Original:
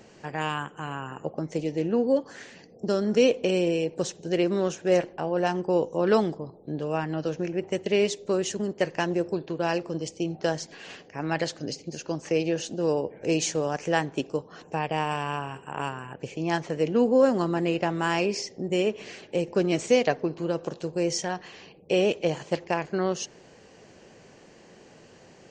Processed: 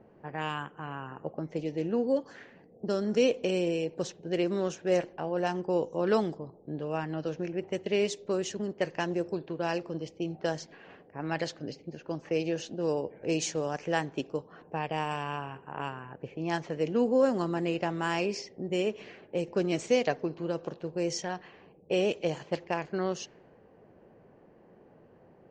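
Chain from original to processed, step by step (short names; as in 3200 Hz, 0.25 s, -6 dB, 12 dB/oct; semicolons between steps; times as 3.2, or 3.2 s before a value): low-pass opened by the level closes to 1000 Hz, open at -20.5 dBFS; gain -4.5 dB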